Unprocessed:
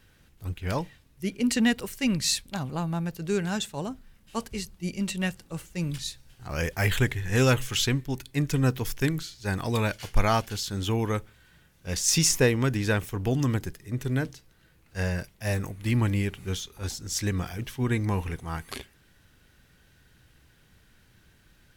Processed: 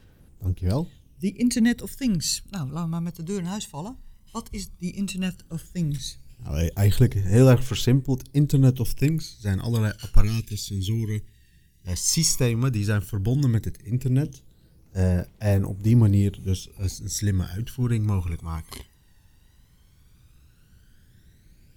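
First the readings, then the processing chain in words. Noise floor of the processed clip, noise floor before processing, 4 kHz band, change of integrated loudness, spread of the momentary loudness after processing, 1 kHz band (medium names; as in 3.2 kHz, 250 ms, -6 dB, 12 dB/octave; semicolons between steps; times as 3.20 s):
-57 dBFS, -61 dBFS, -1.5 dB, +3.5 dB, 15 LU, -5.5 dB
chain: phaser 0.13 Hz, delay 1.1 ms, feedback 59%; peaking EQ 1.8 kHz -8 dB 2 oct; time-frequency box 10.23–11.87 s, 440–1600 Hz -22 dB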